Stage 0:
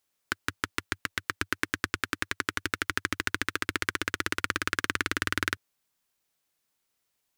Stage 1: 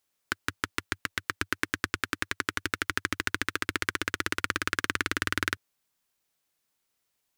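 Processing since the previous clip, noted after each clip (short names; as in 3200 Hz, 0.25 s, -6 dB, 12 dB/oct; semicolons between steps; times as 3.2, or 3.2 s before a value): nothing audible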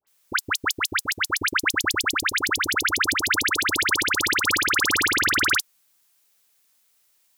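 tilt +2 dB/oct; dispersion highs, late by 72 ms, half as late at 1500 Hz; gain +7.5 dB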